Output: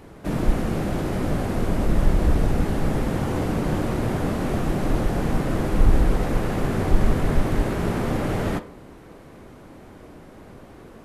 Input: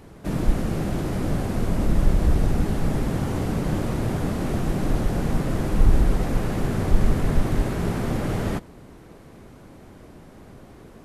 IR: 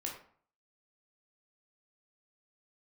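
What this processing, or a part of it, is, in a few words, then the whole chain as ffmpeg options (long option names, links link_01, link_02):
filtered reverb send: -filter_complex "[0:a]asplit=2[link_01][link_02];[link_02]highpass=220,lowpass=4100[link_03];[1:a]atrim=start_sample=2205[link_04];[link_03][link_04]afir=irnorm=-1:irlink=0,volume=-5.5dB[link_05];[link_01][link_05]amix=inputs=2:normalize=0"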